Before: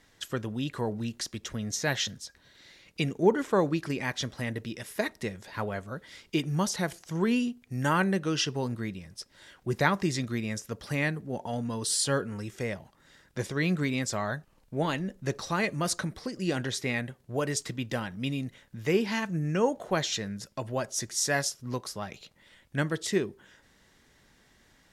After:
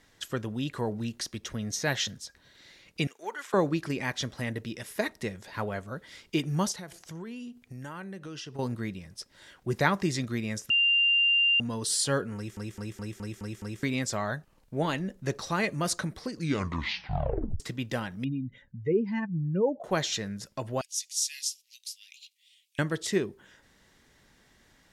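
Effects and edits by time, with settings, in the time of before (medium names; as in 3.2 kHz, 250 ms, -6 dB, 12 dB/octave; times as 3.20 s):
1.18–1.86 s: band-stop 7.3 kHz
3.07–3.54 s: high-pass 1.2 kHz
6.72–8.59 s: compression 4:1, threshold -40 dBFS
10.70–11.60 s: bleep 2.79 kHz -20 dBFS
12.36 s: stutter in place 0.21 s, 7 plays
16.27 s: tape stop 1.33 s
18.24–19.84 s: spectral contrast enhancement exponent 2.1
20.81–22.79 s: steep high-pass 2.5 kHz 48 dB/octave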